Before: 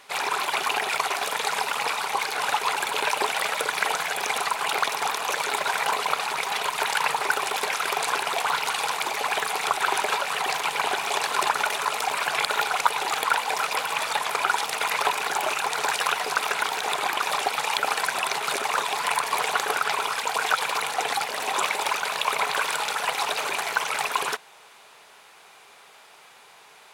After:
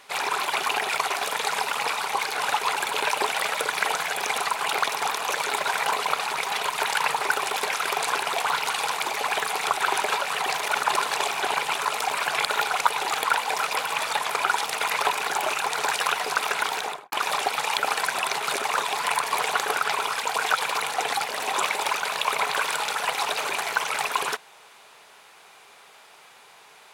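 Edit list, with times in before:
0:10.63–0:11.75: reverse
0:16.77–0:17.12: fade out and dull

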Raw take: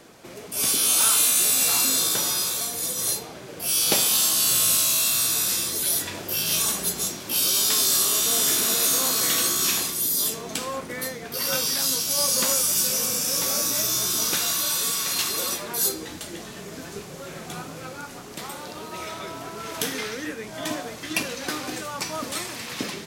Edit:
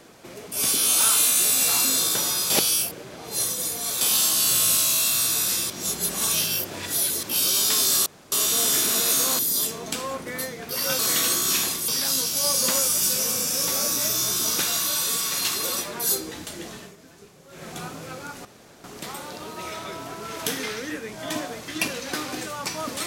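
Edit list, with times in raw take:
0:02.50–0:04.01: reverse
0:05.70–0:07.23: reverse
0:08.06: splice in room tone 0.26 s
0:09.13–0:10.02: move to 0:11.62
0:16.49–0:17.43: duck −12.5 dB, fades 0.21 s
0:18.19: splice in room tone 0.39 s

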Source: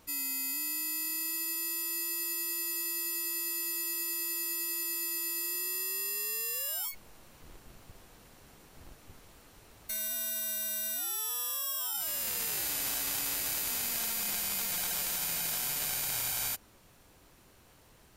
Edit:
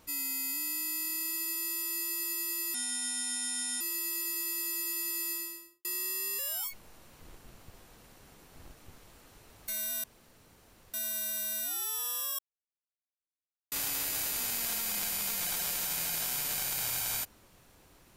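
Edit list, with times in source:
0:02.74–0:03.53: play speed 74%
0:05.02–0:05.57: fade out and dull
0:06.11–0:06.60: remove
0:10.25: splice in room tone 0.90 s
0:11.70–0:13.03: silence

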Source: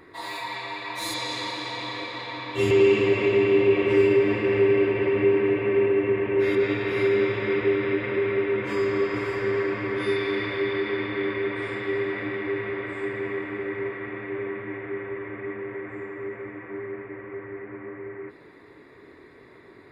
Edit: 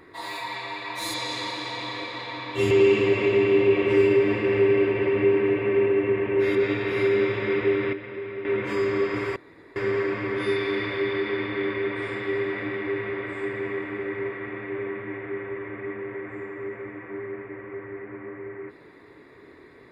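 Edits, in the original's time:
0:07.93–0:08.45: clip gain −9.5 dB
0:09.36: splice in room tone 0.40 s

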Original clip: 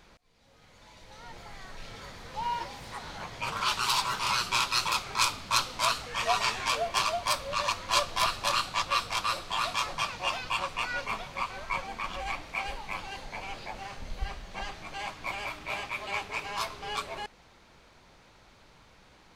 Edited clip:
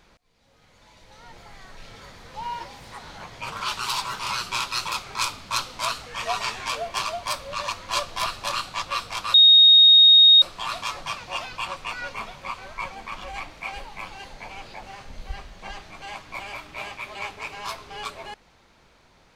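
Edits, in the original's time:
0:09.34: insert tone 3,730 Hz −9 dBFS 1.08 s

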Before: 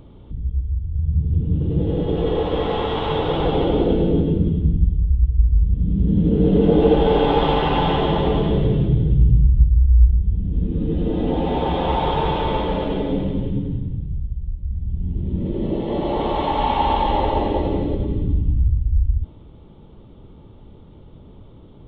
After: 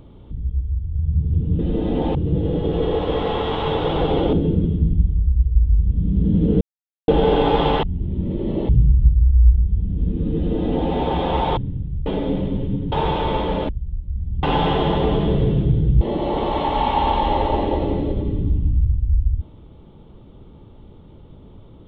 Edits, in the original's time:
0:03.77–0:04.16: remove
0:06.44–0:06.91: silence
0:07.66–0:09.24: swap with 0:14.98–0:15.84
0:10.91–0:11.47: duplicate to 0:01.59
0:12.12–0:12.89: swap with 0:13.75–0:14.24

